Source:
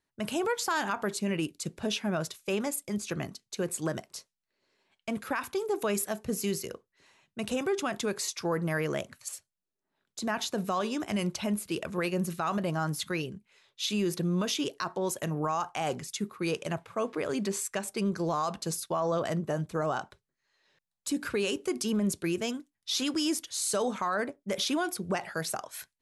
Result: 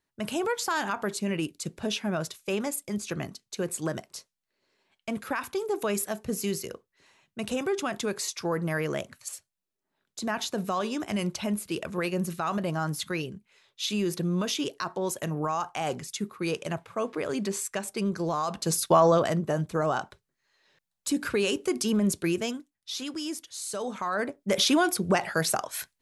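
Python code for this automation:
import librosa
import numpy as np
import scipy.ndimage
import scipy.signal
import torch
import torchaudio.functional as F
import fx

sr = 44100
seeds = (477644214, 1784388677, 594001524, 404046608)

y = fx.gain(x, sr, db=fx.line((18.47, 1.0), (18.96, 11.5), (19.34, 3.5), (22.3, 3.5), (22.98, -5.0), (23.74, -5.0), (24.56, 7.0)))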